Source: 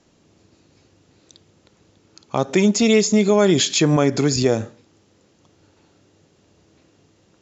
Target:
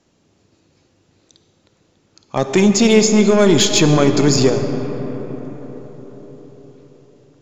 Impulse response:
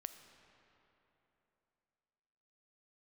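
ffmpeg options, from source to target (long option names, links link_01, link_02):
-filter_complex "[0:a]asettb=1/sr,asplit=3[link_01][link_02][link_03];[link_01]atrim=end=2.364[link_04];[link_02]atrim=start=2.36:end=4.5,asetpts=PTS-STARTPTS,afade=type=in:duration=0.004:curve=qsin,afade=type=out:start_time=2.136:duration=0.004:curve=qsin,acontrast=84[link_05];[link_03]atrim=start=4.496[link_06];[link_04][link_05]acrossfade=duration=0.004:curve1=hsin:curve2=qsin[link_07];[link_07][link_06]acrossfade=duration=0.004:curve1=qsin:curve2=hsin[link_08];[1:a]atrim=start_sample=2205,asetrate=27342,aresample=44100[link_09];[link_08][link_09]afir=irnorm=-1:irlink=0"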